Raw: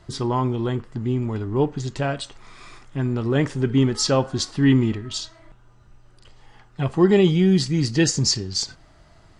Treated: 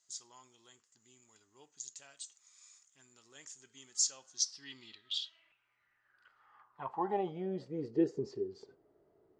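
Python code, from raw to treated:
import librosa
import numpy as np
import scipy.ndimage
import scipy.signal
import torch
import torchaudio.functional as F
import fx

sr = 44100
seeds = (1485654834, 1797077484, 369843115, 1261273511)

y = fx.filter_sweep_bandpass(x, sr, from_hz=6800.0, to_hz=410.0, start_s=4.22, end_s=8.0, q=7.9)
y = y * 10.0 ** (2.0 / 20.0)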